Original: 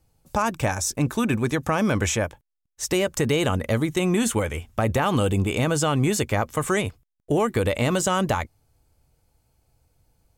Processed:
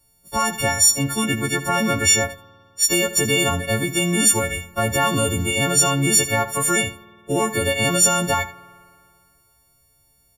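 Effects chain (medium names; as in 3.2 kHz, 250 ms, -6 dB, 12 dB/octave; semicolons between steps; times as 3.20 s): partials quantised in pitch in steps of 4 st; delay 79 ms -15 dB; spring tank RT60 2.2 s, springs 51 ms, chirp 45 ms, DRR 19.5 dB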